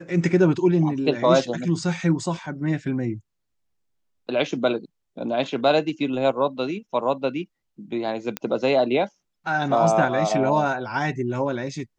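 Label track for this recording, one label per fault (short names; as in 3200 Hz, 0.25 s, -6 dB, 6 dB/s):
8.370000	8.370000	pop -11 dBFS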